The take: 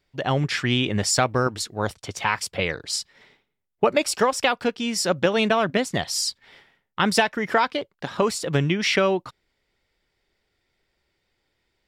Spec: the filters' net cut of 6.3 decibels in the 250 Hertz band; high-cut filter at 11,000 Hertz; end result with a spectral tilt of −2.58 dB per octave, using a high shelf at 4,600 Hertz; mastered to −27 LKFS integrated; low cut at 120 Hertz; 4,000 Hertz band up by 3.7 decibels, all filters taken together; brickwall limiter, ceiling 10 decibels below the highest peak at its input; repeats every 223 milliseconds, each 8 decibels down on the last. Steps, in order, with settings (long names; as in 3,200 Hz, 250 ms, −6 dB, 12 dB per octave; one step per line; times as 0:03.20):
high-pass filter 120 Hz
low-pass filter 11,000 Hz
parametric band 250 Hz −8 dB
parametric band 4,000 Hz +7.5 dB
high-shelf EQ 4,600 Hz −4 dB
brickwall limiter −13.5 dBFS
repeating echo 223 ms, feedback 40%, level −8 dB
level −1.5 dB